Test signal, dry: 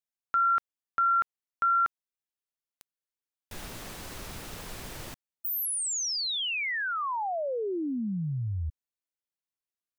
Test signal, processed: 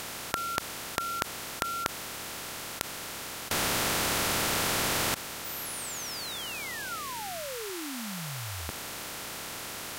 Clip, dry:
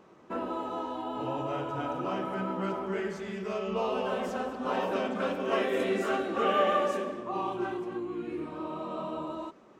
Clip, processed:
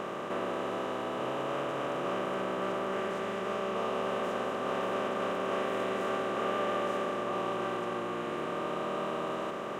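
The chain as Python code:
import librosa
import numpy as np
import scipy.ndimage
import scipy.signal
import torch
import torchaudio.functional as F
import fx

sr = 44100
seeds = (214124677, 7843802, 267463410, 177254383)

y = fx.bin_compress(x, sr, power=0.2)
y = y * 10.0 ** (-11.0 / 20.0)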